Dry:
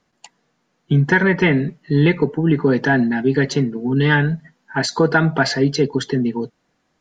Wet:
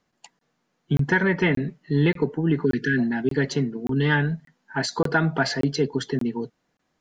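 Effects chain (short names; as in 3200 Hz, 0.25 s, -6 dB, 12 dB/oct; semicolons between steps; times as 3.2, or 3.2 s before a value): spectral delete 2.65–2.98, 470–1400 Hz; crackling interface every 0.58 s, samples 1024, zero, from 0.39; gain -5.5 dB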